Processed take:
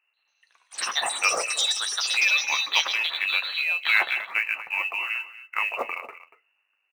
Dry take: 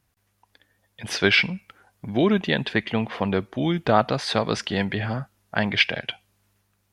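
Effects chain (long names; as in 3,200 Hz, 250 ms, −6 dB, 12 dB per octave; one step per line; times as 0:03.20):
on a send: single-tap delay 236 ms −14.5 dB
on the sum: voice inversion scrambler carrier 2,800 Hz
delay with pitch and tempo change per echo 139 ms, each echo +7 semitones, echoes 3
high-pass filter 700 Hz 12 dB per octave
in parallel at −4.5 dB: floating-point word with a short mantissa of 2 bits
on the sum: flanger 0.4 Hz, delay 8.5 ms, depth 3.7 ms, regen −54%
level −3 dB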